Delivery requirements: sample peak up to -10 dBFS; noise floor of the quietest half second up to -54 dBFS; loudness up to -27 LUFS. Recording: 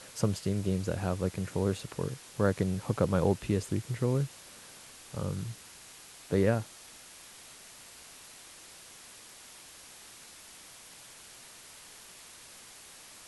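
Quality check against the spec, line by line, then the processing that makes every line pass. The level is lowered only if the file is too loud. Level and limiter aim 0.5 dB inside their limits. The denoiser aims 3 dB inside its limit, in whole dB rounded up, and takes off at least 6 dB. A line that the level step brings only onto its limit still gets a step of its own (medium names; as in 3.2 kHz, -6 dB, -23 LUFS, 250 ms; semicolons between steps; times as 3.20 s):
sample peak -12.5 dBFS: pass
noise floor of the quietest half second -51 dBFS: fail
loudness -31.5 LUFS: pass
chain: noise reduction 6 dB, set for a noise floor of -51 dBFS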